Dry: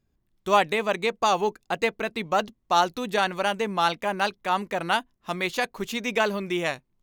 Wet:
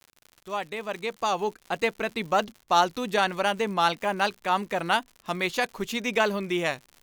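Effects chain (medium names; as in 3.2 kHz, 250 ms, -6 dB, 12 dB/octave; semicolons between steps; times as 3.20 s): fade-in on the opening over 2.10 s; crackle 110 per s -37 dBFS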